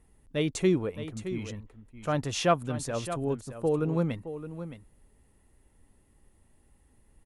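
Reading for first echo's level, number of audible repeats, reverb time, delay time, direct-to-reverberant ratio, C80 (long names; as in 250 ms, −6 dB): −11.5 dB, 1, no reverb audible, 618 ms, no reverb audible, no reverb audible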